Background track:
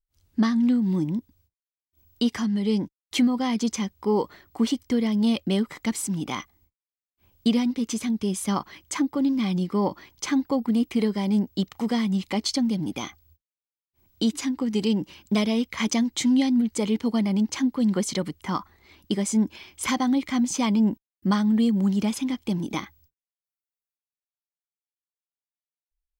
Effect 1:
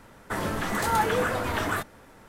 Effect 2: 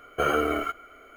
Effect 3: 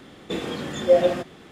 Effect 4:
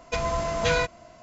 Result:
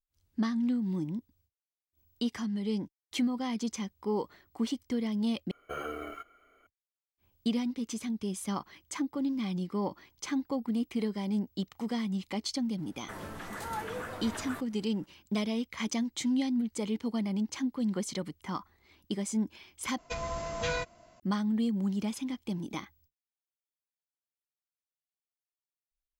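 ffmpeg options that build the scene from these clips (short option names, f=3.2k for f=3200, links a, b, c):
-filter_complex "[0:a]volume=-8.5dB[a];[4:a]highshelf=f=6.3k:g=4[b];[a]asplit=3[c][d][e];[c]atrim=end=5.514[f];[2:a]atrim=end=1.16,asetpts=PTS-STARTPTS,volume=-14dB[g];[d]atrim=start=6.666:end=19.984[h];[b]atrim=end=1.22,asetpts=PTS-STARTPTS,volume=-9dB[i];[e]atrim=start=21.196[j];[1:a]atrim=end=2.28,asetpts=PTS-STARTPTS,volume=-13dB,afade=t=in:d=0.004:c=hsin,afade=t=out:st=2.276:d=0.004:c=hsin,adelay=12780[k];[f][g]acrossfade=d=0.004:c1=hsin:c2=hsin[l];[l][h]acrossfade=d=0.004:c1=hsin:c2=hsin[m];[m][i]acrossfade=d=0.004:c1=hsin:c2=hsin[n];[n][j]acrossfade=d=0.004:c1=hsin:c2=hsin[o];[o][k]amix=inputs=2:normalize=0"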